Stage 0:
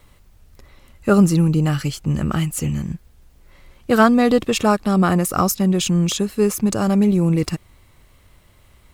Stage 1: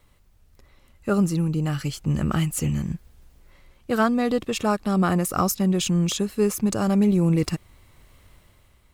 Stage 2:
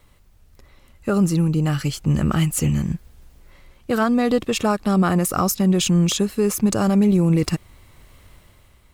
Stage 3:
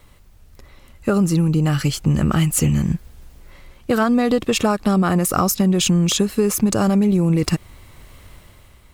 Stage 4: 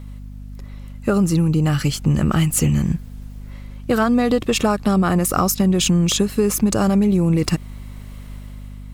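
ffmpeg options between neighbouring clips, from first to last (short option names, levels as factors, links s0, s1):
-af "dynaudnorm=f=130:g=9:m=2.51,volume=0.398"
-af "alimiter=level_in=4.47:limit=0.891:release=50:level=0:latency=1,volume=0.376"
-af "acompressor=threshold=0.126:ratio=6,volume=1.78"
-af "aeval=exprs='val(0)+0.0224*(sin(2*PI*50*n/s)+sin(2*PI*2*50*n/s)/2+sin(2*PI*3*50*n/s)/3+sin(2*PI*4*50*n/s)/4+sin(2*PI*5*50*n/s)/5)':c=same"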